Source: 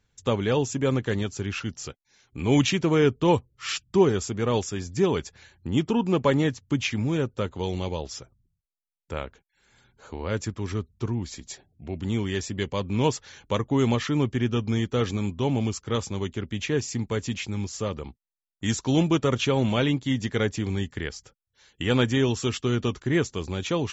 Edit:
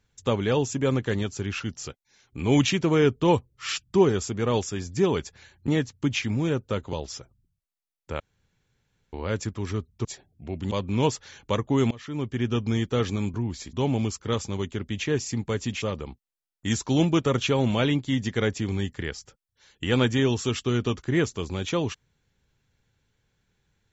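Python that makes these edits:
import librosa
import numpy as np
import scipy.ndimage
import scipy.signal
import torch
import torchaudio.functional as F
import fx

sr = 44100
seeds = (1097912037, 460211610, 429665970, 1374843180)

y = fx.edit(x, sr, fx.cut(start_s=5.68, length_s=0.68),
    fx.cut(start_s=7.61, length_s=0.33),
    fx.room_tone_fill(start_s=9.21, length_s=0.93),
    fx.move(start_s=11.06, length_s=0.39, to_s=15.35),
    fx.cut(start_s=12.11, length_s=0.61),
    fx.fade_in_from(start_s=13.92, length_s=0.63, floor_db=-23.5),
    fx.cut(start_s=17.44, length_s=0.36), tone=tone)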